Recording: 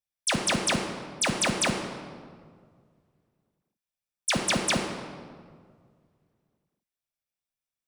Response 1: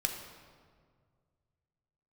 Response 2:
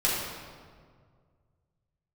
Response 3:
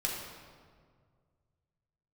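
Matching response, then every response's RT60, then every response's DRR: 1; 1.9, 1.9, 1.9 s; 2.5, -8.5, -3.5 dB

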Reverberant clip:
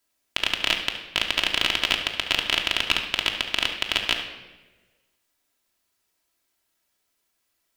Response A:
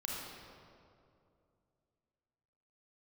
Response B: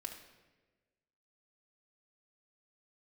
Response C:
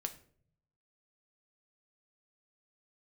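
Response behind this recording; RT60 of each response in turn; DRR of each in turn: B; 2.5, 1.3, 0.55 s; -3.5, 0.5, 6.0 dB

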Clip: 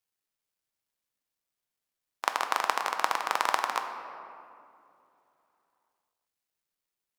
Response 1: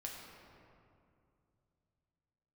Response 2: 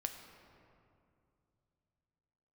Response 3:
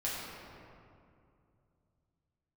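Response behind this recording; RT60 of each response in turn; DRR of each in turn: 2; 2.5, 2.6, 2.5 s; -1.5, 5.0, -7.5 dB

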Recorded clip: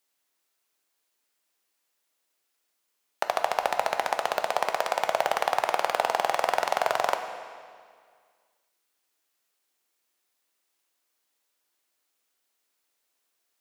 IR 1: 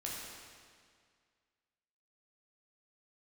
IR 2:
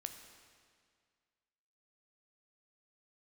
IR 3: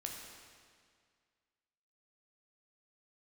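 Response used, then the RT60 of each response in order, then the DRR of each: 2; 2.0, 2.0, 2.0 s; -4.5, 6.0, 0.0 dB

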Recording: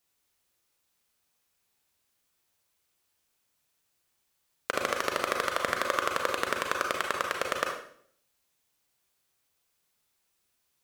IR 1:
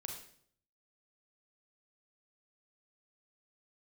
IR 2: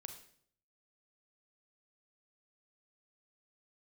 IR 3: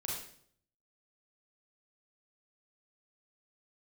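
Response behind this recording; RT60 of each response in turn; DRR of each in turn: 1; 0.60, 0.60, 0.60 s; 1.5, 5.5, -4.0 dB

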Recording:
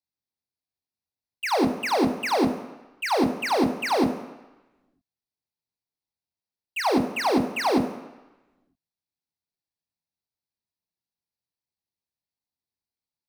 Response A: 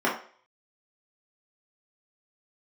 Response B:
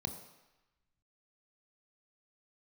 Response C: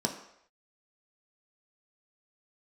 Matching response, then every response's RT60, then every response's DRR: B; 0.45 s, 1.0 s, not exponential; -6.5, 6.0, 1.5 dB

